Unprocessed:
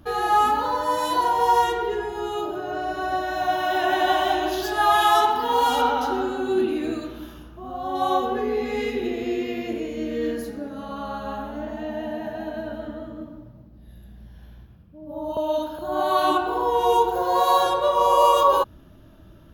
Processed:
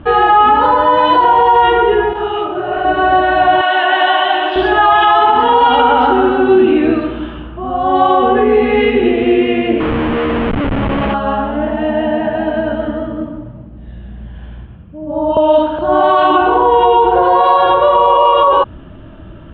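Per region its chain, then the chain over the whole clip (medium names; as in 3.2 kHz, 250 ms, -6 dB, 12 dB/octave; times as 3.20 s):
2.13–2.85 s: hum notches 50/100/150/200/250/300/350/400 Hz + hard clipper -22 dBFS + detune thickener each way 52 cents
3.61–4.56 s: high-pass 1.2 kHz 6 dB/octave + band-stop 2.4 kHz, Q 11
9.80–11.14 s: Schmitt trigger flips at -32.5 dBFS + distance through air 120 m
whole clip: elliptic low-pass 3.1 kHz, stop band 80 dB; loudness maximiser +16.5 dB; trim -1 dB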